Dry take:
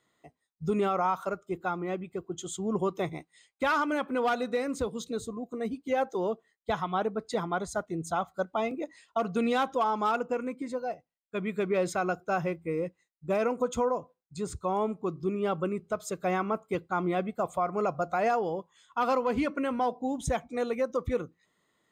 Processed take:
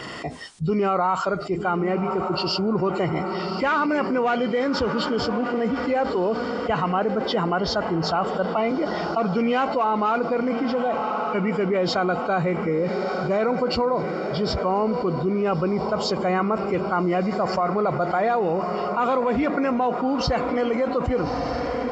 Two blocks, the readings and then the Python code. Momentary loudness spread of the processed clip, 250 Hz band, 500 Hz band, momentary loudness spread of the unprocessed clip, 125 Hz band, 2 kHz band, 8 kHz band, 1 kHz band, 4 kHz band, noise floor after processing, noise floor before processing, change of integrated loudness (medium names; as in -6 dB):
3 LU, +9.0 dB, +7.5 dB, 8 LU, +10.0 dB, +7.0 dB, no reading, +7.0 dB, +13.5 dB, -28 dBFS, -79 dBFS, +7.5 dB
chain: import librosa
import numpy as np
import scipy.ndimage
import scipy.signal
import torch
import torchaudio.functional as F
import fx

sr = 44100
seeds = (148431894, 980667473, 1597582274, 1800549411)

y = fx.freq_compress(x, sr, knee_hz=2000.0, ratio=1.5)
y = fx.echo_diffused(y, sr, ms=1202, feedback_pct=46, wet_db=-14)
y = fx.env_flatten(y, sr, amount_pct=70)
y = F.gain(torch.from_numpy(y), 3.5).numpy()